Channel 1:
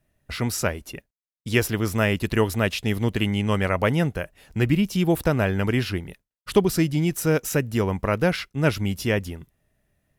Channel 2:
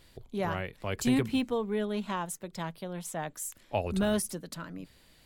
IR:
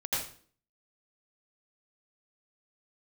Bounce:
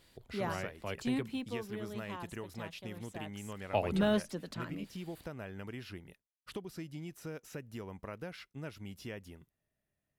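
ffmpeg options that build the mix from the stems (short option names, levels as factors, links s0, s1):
-filter_complex "[0:a]acompressor=threshold=0.0562:ratio=4,volume=0.188[s0];[1:a]volume=2.11,afade=t=out:st=0.75:d=0.78:silence=0.446684,afade=t=in:st=3.29:d=0.41:silence=0.298538[s1];[s0][s1]amix=inputs=2:normalize=0,acrossover=split=5000[s2][s3];[s3]acompressor=threshold=0.00178:ratio=4:attack=1:release=60[s4];[s2][s4]amix=inputs=2:normalize=0,lowshelf=f=70:g=-9"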